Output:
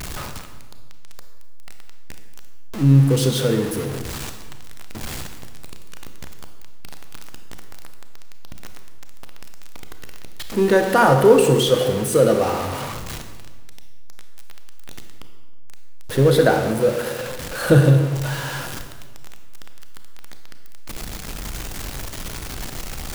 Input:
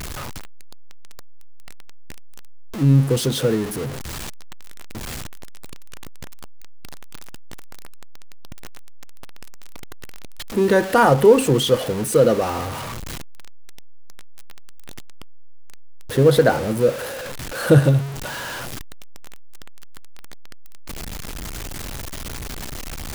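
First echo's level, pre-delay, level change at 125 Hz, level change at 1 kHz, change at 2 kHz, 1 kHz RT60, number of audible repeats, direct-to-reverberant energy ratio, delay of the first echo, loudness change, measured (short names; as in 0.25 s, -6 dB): none, 26 ms, +2.0 dB, +1.0 dB, +1.0 dB, 1.2 s, none, 6.0 dB, none, +1.0 dB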